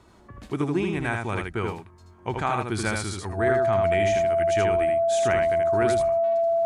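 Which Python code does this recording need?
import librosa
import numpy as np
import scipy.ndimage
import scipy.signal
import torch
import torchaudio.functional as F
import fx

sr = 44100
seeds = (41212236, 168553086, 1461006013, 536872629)

y = fx.notch(x, sr, hz=670.0, q=30.0)
y = fx.fix_echo_inverse(y, sr, delay_ms=79, level_db=-4.0)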